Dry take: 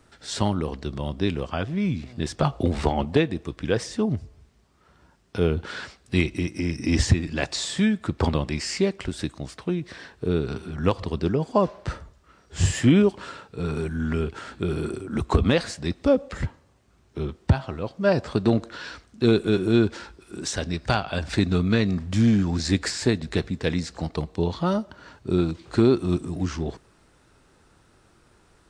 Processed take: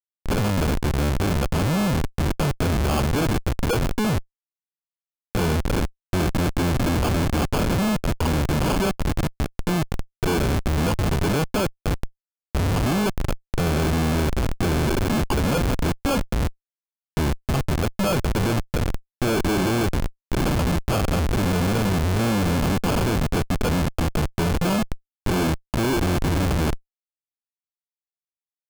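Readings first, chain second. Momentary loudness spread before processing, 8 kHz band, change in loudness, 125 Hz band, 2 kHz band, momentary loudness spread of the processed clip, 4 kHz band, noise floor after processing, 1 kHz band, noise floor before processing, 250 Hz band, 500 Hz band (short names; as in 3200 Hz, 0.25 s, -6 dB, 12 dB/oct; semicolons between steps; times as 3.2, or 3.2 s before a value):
12 LU, +3.0 dB, +1.5 dB, +3.5 dB, +3.5 dB, 6 LU, +2.0 dB, under -85 dBFS, +5.0 dB, -60 dBFS, +0.5 dB, -0.5 dB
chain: bin magnitudes rounded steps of 15 dB; in parallel at 0 dB: limiter -14 dBFS, peak gain reduction 8 dB; on the sum: sample-and-hold 23×; Schmitt trigger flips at -28 dBFS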